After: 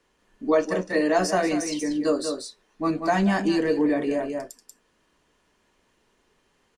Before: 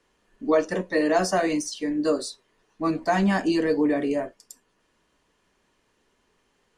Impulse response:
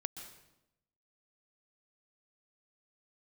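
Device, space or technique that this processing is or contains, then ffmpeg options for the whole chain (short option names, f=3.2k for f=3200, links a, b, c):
ducked delay: -filter_complex "[0:a]asplit=3[a][b][c];[b]adelay=187,volume=-3.5dB[d];[c]apad=whole_len=306819[e];[d][e]sidechaincompress=threshold=-29dB:ratio=8:attack=32:release=263[f];[a][f]amix=inputs=2:normalize=0"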